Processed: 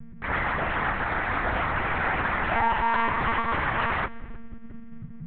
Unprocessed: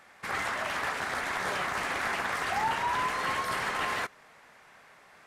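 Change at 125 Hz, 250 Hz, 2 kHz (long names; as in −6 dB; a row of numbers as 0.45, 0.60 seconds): +13.5, +9.5, +4.5 decibels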